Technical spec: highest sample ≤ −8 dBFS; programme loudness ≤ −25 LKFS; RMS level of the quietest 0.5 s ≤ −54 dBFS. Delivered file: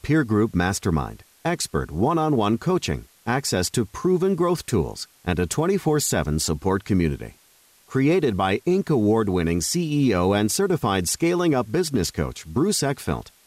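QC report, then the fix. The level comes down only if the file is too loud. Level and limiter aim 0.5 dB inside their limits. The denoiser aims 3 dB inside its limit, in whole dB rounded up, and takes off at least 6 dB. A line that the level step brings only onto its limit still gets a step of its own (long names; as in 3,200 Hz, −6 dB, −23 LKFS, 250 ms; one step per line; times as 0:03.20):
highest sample −10.5 dBFS: in spec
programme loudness −22.5 LKFS: out of spec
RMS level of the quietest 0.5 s −57 dBFS: in spec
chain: level −3 dB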